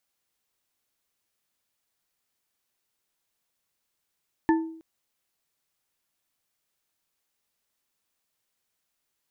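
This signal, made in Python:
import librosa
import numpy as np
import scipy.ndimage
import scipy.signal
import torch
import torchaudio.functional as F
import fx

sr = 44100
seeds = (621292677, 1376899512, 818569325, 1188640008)

y = fx.strike_glass(sr, length_s=0.32, level_db=-16, body='bar', hz=324.0, decay_s=0.62, tilt_db=5.0, modes=3)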